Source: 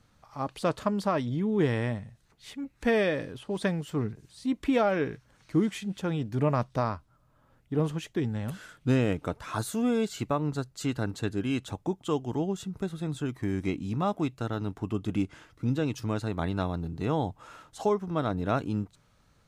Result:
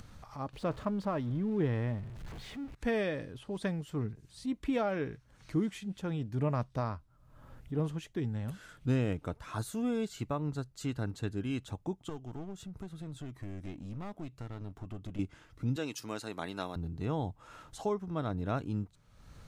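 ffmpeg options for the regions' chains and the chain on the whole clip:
-filter_complex "[0:a]asettb=1/sr,asplit=3[s0][s1][s2];[s0]atrim=end=0.534[s3];[s1]atrim=start=0.53:end=2.75,asetpts=PTS-STARTPTS,afade=t=in:d=0.004:c=qsin,afade=t=out:st=2.216:d=0.004:c=qsin,aeval=exprs='val(0)+0.5*0.0112*sgn(val(0))':c=same,lowpass=f=2100:p=1[s4];[s2]atrim=start=2.746[s5];[s3][s4]acrossfade=d=0.004:c1=hsin:c2=qsin[s6];[s6][s5]acrossfade=d=0.004:c1=qsin:c2=hsin,asettb=1/sr,asplit=3[s7][s8][s9];[s7]atrim=end=12.094[s10];[s8]atrim=start=12.09:end=15.19,asetpts=PTS-STARTPTS,afade=t=in:d=0.004:c=qsin,afade=t=out:st=3.096:d=0.004:c=qsin,acompressor=threshold=0.00794:ratio=1.5:attack=3.2:release=140:knee=1:detection=peak,aeval=exprs='clip(val(0),-1,0.0141)':c=same[s11];[s9]atrim=start=15.186[s12];[s10][s11]acrossfade=d=0.004:c1=hsin:c2=qsin[s13];[s13][s12]acrossfade=d=0.004:c1=qsin:c2=hsin,asettb=1/sr,asplit=3[s14][s15][s16];[s14]atrim=end=15.764[s17];[s15]atrim=start=15.76:end=16.76,asetpts=PTS-STARTPTS,afade=t=in:d=0.004:c=qsin,afade=t=out:st=0.996:d=0.004:c=qsin,highpass=270,highshelf=f=2300:g=10,bandreject=f=3500:w=21[s18];[s16]atrim=start=16.756[s19];[s17][s18]acrossfade=d=0.004:c1=hsin:c2=qsin[s20];[s20][s19]acrossfade=d=0.004:c1=qsin:c2=hsin,acompressor=mode=upward:threshold=0.0178:ratio=2.5,lowshelf=f=110:g=9.5,volume=0.422"

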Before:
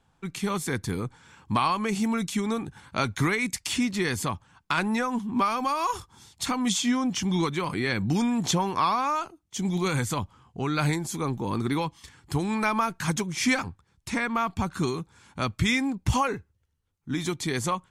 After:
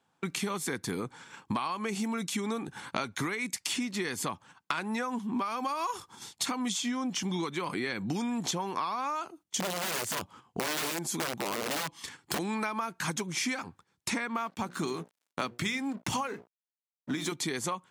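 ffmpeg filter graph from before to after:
-filter_complex "[0:a]asettb=1/sr,asplit=3[s0][s1][s2];[s0]atrim=end=9.604[s3];[s1]atrim=start=9.6:end=12.39,asetpts=PTS-STARTPTS,afade=t=in:d=0.004:c=qsin,afade=t=out:st=2.786:d=0.004:c=qsin,deesser=0.3,aeval=exprs='(mod(15*val(0)+1,2)-1)/15':c=same[s4];[s2]atrim=start=12.386[s5];[s3][s4]acrossfade=d=0.004:c1=hsin:c2=qsin[s6];[s6][s5]acrossfade=d=0.004:c1=qsin:c2=hsin,asettb=1/sr,asplit=3[s7][s8][s9];[s7]atrim=end=14.374[s10];[s8]atrim=start=14.37:end=17.32,asetpts=PTS-STARTPTS,afade=t=in:d=0.004:c=qsin,afade=t=out:st=2.946:d=0.004:c=qsin,highpass=96,bandreject=f=60:t=h:w=6,bandreject=f=120:t=h:w=6,bandreject=f=180:t=h:w=6,bandreject=f=240:t=h:w=6,bandreject=f=300:t=h:w=6,bandreject=f=360:t=h:w=6,bandreject=f=420:t=h:w=6,bandreject=f=480:t=h:w=6,aeval=exprs='sgn(val(0))*max(abs(val(0))-0.00398,0)':c=same[s11];[s9]atrim=start=17.316[s12];[s10][s11]acrossfade=d=0.004:c1=hsin:c2=qsin[s13];[s13][s12]acrossfade=d=0.004:c1=qsin:c2=hsin,highpass=210,agate=range=0.251:threshold=0.00251:ratio=16:detection=peak,acompressor=threshold=0.0126:ratio=8,volume=2.51"

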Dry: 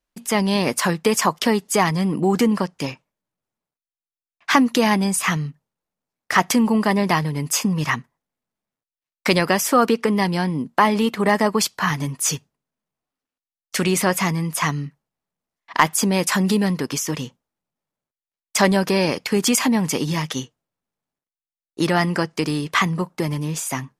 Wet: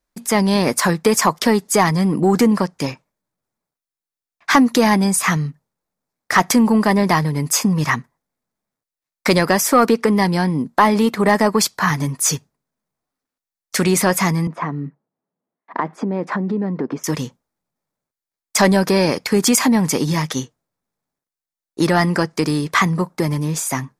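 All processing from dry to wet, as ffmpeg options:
-filter_complex "[0:a]asettb=1/sr,asplit=3[s0][s1][s2];[s0]atrim=end=14.474[s3];[s1]atrim=start=14.47:end=17.04,asetpts=PTS-STARTPTS,afade=t=in:d=0.004:c=qsin,afade=t=out:st=2.566:d=0.004:c=qsin,tiltshelf=f=750:g=7.5,acompressor=threshold=0.112:ratio=4:attack=3.2:release=140:knee=1:detection=peak,highpass=240,lowpass=2000[s4];[s2]atrim=start=17.036[s5];[s3][s4]acrossfade=d=0.004:c1=hsin:c2=qsin[s6];[s6][s5]acrossfade=d=0.004:c1=qsin:c2=hsin,equalizer=f=2900:w=3.5:g=-8,acontrast=28,volume=0.891"

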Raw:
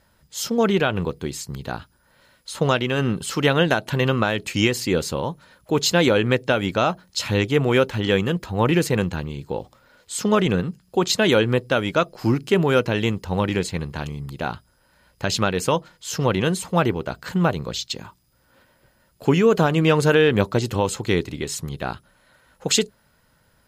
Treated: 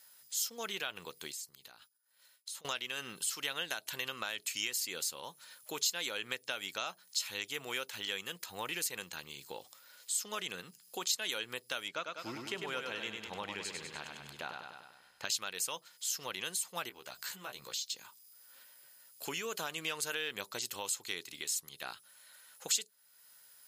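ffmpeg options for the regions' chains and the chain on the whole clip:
-filter_complex "[0:a]asettb=1/sr,asplit=3[s0][s1][s2];[s0]atrim=end=1.324[s3];[s1]atrim=start=1.32:end=2.65,asetpts=PTS-STARTPTS,afade=t=in:d=0.004:c=qsin,afade=t=out:st=1.326:d=0.004:c=qsin,acompressor=threshold=0.00794:ratio=10:attack=3.2:release=140:knee=1:detection=peak,agate=range=0.0224:threshold=0.00316:ratio=3:release=100:detection=peak[s4];[s2]atrim=start=2.646[s5];[s3][s4]acrossfade=d=0.004:c1=hsin:c2=qsin[s6];[s6][s5]acrossfade=d=0.004:c1=qsin:c2=hsin,asettb=1/sr,asplit=3[s7][s8][s9];[s7]atrim=end=11.884[s10];[s8]atrim=start=11.88:end=15.25,asetpts=PTS-STARTPTS,afade=t=in:d=0.004:c=qsin,afade=t=out:st=3.366:d=0.004:c=qsin,aemphasis=mode=reproduction:type=75fm,aecho=1:1:99|198|297|396|495|594|693:0.562|0.292|0.152|0.0791|0.0411|0.0214|0.0111,atrim=end_sample=148617[s11];[s9]atrim=start=15.246[s12];[s10][s11]acrossfade=d=0.004:c1=hsin:c2=qsin[s13];[s13][s12]acrossfade=d=0.004:c1=qsin:c2=hsin,asettb=1/sr,asplit=3[s14][s15][s16];[s14]atrim=end=16.894[s17];[s15]atrim=start=16.89:end=17.96,asetpts=PTS-STARTPTS,afade=t=in:d=0.004:c=qsin,afade=t=out:st=1.066:d=0.004:c=qsin,acompressor=threshold=0.02:ratio=2:attack=3.2:release=140:knee=1:detection=peak,asplit=2[s18][s19];[s19]adelay=15,volume=0.631[s20];[s18][s20]amix=inputs=2:normalize=0,atrim=end_sample=47187[s21];[s16]atrim=start=17.956[s22];[s17][s21]acrossfade=d=0.004:c1=hsin:c2=qsin[s23];[s23][s22]acrossfade=d=0.004:c1=qsin:c2=hsin,aderivative,acompressor=threshold=0.00316:ratio=2,volume=2.37"

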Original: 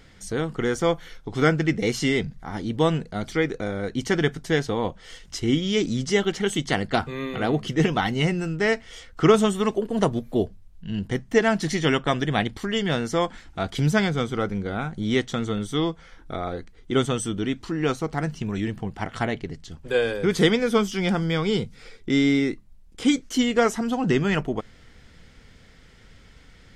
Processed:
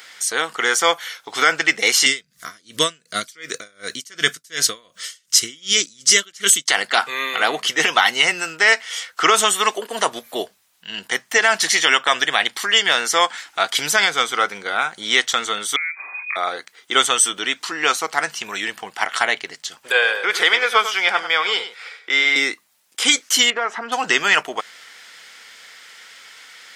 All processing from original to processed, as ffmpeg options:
-filter_complex "[0:a]asettb=1/sr,asplit=3[s0][s1][s2];[s0]atrim=end=2.064[s3];[s1]atrim=start=2.06:end=6.68,asetpts=PTS-STARTPTS,afade=t=in:d=0.004:c=qsin,afade=t=out:st=4.616:d=0.004:c=qsin,asuperstop=centerf=840:order=4:qfactor=2.5,bass=f=250:g=15,treble=f=4000:g=11,aeval=exprs='val(0)*pow(10,-32*(0.5-0.5*cos(2*PI*2.7*n/s))/20)':c=same[s4];[s2]atrim=start=6.676[s5];[s3][s4]acrossfade=d=0.004:c1=hsin:c2=qsin[s6];[s6][s5]acrossfade=d=0.004:c1=qsin:c2=hsin,asettb=1/sr,asplit=3[s7][s8][s9];[s7]atrim=end=15.764[s10];[s8]atrim=start=15.76:end=16.36,asetpts=PTS-STARTPTS,afade=t=in:d=0.004:c=qsin,afade=t=out:st=0.596:d=0.004:c=qsin,acompressor=threshold=0.0158:ratio=8:attack=3.2:release=140:knee=1:detection=peak,lowpass=f=2100:t=q:w=0.5098,lowpass=f=2100:t=q:w=0.6013,lowpass=f=2100:t=q:w=0.9,lowpass=f=2100:t=q:w=2.563,afreqshift=-2500,lowshelf=f=370:g=6[s11];[s9]atrim=start=16.356[s12];[s10][s11]acrossfade=d=0.004:c1=hsin:c2=qsin[s13];[s13][s12]acrossfade=d=0.004:c1=qsin:c2=hsin,asettb=1/sr,asplit=3[s14][s15][s16];[s14]atrim=end=19.924[s17];[s15]atrim=start=19.92:end=22.36,asetpts=PTS-STARTPTS,afade=t=in:d=0.004:c=qsin,afade=t=out:st=2.436:d=0.004:c=qsin,acrossover=split=370 3500:gain=0.158 1 0.224[s18][s19][s20];[s18][s19][s20]amix=inputs=3:normalize=0,aecho=1:1:99:0.266,atrim=end_sample=107604[s21];[s16]atrim=start=22.356[s22];[s17][s21]acrossfade=d=0.004:c1=hsin:c2=qsin[s23];[s23][s22]acrossfade=d=0.004:c1=qsin:c2=hsin,asettb=1/sr,asplit=3[s24][s25][s26];[s24]atrim=end=23.504[s27];[s25]atrim=start=23.5:end=23.92,asetpts=PTS-STARTPTS,afade=t=in:d=0.004:c=qsin,afade=t=out:st=0.416:d=0.004:c=qsin,aeval=exprs='clip(val(0),-1,0.178)':c=same,acompressor=threshold=0.0708:ratio=4:attack=3.2:release=140:knee=1:detection=peak,lowpass=1800[s28];[s26]atrim=start=23.916[s29];[s27][s28]acrossfade=d=0.004:c1=hsin:c2=qsin[s30];[s30][s29]acrossfade=d=0.004:c1=qsin:c2=hsin,highpass=1100,highshelf=f=9500:g=8.5,alimiter=level_in=5.96:limit=0.891:release=50:level=0:latency=1,volume=0.891"

